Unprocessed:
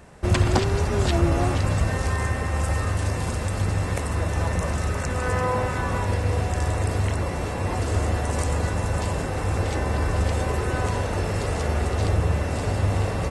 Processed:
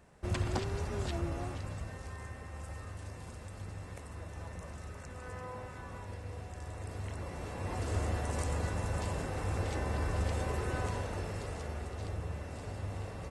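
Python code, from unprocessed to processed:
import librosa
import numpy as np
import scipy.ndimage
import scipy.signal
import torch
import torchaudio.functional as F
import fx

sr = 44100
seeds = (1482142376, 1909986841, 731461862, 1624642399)

y = fx.gain(x, sr, db=fx.line((0.93, -13.5), (1.99, -20.0), (6.61, -20.0), (7.92, -10.0), (10.77, -10.0), (11.9, -17.0)))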